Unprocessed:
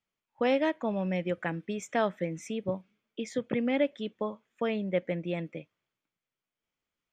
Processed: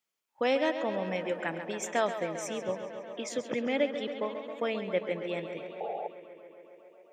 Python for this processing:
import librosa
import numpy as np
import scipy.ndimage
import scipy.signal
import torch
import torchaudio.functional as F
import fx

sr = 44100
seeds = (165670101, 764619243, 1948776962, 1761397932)

y = fx.low_shelf(x, sr, hz=110.0, db=-11.5)
y = fx.echo_tape(y, sr, ms=135, feedback_pct=89, wet_db=-9.0, lp_hz=4800.0, drive_db=15.0, wow_cents=34)
y = fx.spec_paint(y, sr, seeds[0], shape='noise', start_s=5.8, length_s=0.28, low_hz=420.0, high_hz=870.0, level_db=-35.0)
y = fx.bass_treble(y, sr, bass_db=-6, treble_db=7)